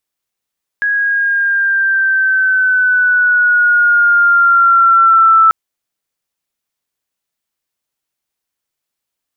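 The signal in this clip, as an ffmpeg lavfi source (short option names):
-f lavfi -i "aevalsrc='pow(10,(-4.5+7*(t/4.69-1))/20)*sin(2*PI*1660*4.69/(-4*log(2)/12)*(exp(-4*log(2)/12*t/4.69)-1))':d=4.69:s=44100"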